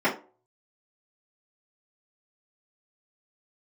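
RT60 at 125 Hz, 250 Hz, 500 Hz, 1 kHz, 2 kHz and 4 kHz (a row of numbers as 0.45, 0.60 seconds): 0.30, 0.40, 0.40, 0.35, 0.25, 0.20 seconds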